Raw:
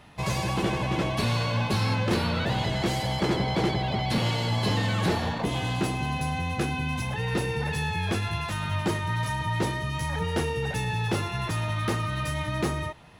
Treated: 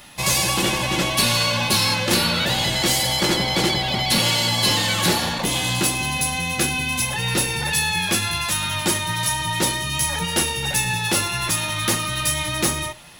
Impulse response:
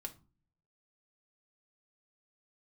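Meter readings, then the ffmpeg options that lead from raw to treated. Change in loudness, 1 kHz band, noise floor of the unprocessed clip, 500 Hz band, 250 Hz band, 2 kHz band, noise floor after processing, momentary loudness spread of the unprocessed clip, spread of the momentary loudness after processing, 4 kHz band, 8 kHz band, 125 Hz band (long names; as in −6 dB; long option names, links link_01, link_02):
+8.0 dB, +5.0 dB, −33 dBFS, +3.0 dB, +3.0 dB, +9.0 dB, −26 dBFS, 4 LU, 4 LU, +13.5 dB, +19.5 dB, −0.5 dB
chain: -filter_complex "[0:a]asplit=2[link_01][link_02];[1:a]atrim=start_sample=2205,atrim=end_sample=3087[link_03];[link_02][link_03]afir=irnorm=-1:irlink=0,volume=2.5dB[link_04];[link_01][link_04]amix=inputs=2:normalize=0,crystalizer=i=6.5:c=0,volume=-3dB"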